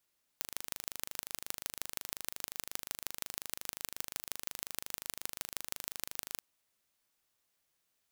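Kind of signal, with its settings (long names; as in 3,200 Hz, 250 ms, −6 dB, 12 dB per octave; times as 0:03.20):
impulse train 25.6 per second, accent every 4, −7.5 dBFS 5.98 s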